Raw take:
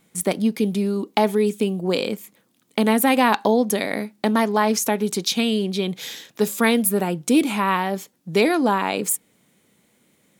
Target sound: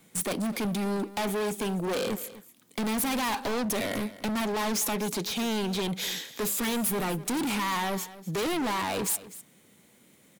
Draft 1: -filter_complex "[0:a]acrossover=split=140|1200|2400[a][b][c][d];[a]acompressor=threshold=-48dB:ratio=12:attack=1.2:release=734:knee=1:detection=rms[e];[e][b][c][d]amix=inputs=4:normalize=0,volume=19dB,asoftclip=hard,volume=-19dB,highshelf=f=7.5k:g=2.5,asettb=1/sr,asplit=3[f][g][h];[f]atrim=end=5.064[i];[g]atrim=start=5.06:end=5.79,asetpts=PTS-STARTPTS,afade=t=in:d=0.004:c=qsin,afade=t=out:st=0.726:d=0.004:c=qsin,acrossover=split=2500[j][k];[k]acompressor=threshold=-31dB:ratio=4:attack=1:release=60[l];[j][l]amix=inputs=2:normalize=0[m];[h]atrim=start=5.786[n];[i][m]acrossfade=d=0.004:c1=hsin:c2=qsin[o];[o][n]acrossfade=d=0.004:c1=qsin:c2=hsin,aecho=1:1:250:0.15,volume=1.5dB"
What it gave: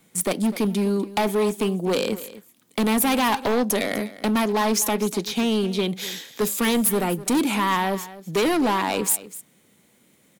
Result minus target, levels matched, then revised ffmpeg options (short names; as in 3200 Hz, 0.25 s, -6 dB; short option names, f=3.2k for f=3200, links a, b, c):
overloaded stage: distortion -5 dB
-filter_complex "[0:a]acrossover=split=140|1200|2400[a][b][c][d];[a]acompressor=threshold=-48dB:ratio=12:attack=1.2:release=734:knee=1:detection=rms[e];[e][b][c][d]amix=inputs=4:normalize=0,volume=29dB,asoftclip=hard,volume=-29dB,highshelf=f=7.5k:g=2.5,asettb=1/sr,asplit=3[f][g][h];[f]atrim=end=5.064[i];[g]atrim=start=5.06:end=5.79,asetpts=PTS-STARTPTS,afade=t=in:d=0.004:c=qsin,afade=t=out:st=0.726:d=0.004:c=qsin,acrossover=split=2500[j][k];[k]acompressor=threshold=-31dB:ratio=4:attack=1:release=60[l];[j][l]amix=inputs=2:normalize=0[m];[h]atrim=start=5.786[n];[i][m]acrossfade=d=0.004:c1=hsin:c2=qsin[o];[o][n]acrossfade=d=0.004:c1=qsin:c2=hsin,aecho=1:1:250:0.15,volume=1.5dB"